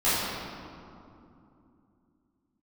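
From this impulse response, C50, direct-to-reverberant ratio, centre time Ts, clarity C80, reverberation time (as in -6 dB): -3.5 dB, -14.5 dB, 0.153 s, -1.0 dB, 2.7 s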